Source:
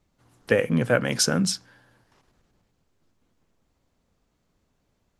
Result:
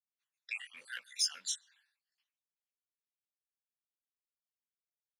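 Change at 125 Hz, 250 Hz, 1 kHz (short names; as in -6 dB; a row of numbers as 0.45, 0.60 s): under -40 dB, under -40 dB, -25.0 dB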